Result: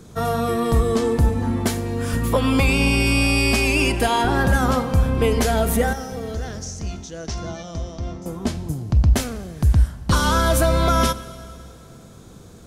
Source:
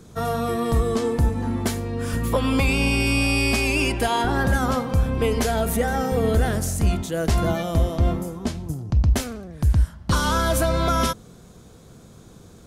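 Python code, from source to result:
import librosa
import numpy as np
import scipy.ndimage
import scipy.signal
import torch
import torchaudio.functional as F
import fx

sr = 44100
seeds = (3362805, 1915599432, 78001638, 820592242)

y = fx.ladder_lowpass(x, sr, hz=6300.0, resonance_pct=70, at=(5.93, 8.26))
y = fx.rev_schroeder(y, sr, rt60_s=2.5, comb_ms=31, drr_db=15.0)
y = F.gain(torch.from_numpy(y), 2.5).numpy()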